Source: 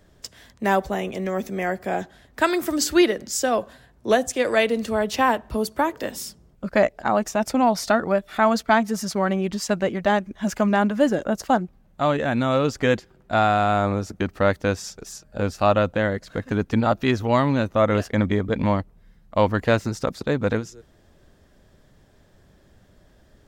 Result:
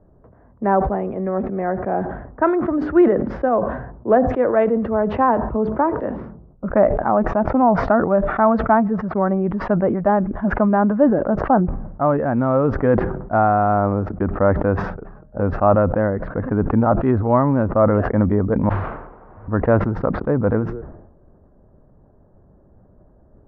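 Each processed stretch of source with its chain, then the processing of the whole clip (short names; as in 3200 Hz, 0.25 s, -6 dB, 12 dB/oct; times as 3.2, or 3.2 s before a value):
8.91–9.36 LPF 9100 Hz + high shelf 3700 Hz -7 dB
18.69–19.48 inverse Chebyshev band-stop 390–7800 Hz, stop band 70 dB + fixed phaser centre 300 Hz, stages 4 + requantised 6-bit, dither triangular
whole clip: LPF 1300 Hz 24 dB/oct; low-pass opened by the level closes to 1000 Hz, open at -20 dBFS; sustainer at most 59 dB/s; gain +3.5 dB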